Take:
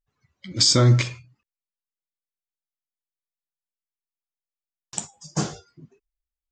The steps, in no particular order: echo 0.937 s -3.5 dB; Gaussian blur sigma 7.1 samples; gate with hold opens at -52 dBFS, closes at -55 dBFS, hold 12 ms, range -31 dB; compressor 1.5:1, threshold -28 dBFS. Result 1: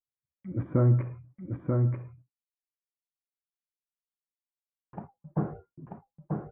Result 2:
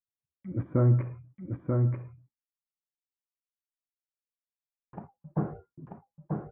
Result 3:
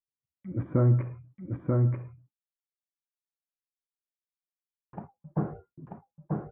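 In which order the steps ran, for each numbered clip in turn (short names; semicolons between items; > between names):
Gaussian blur > compressor > echo > gate with hold; compressor > Gaussian blur > gate with hold > echo; Gaussian blur > gate with hold > echo > compressor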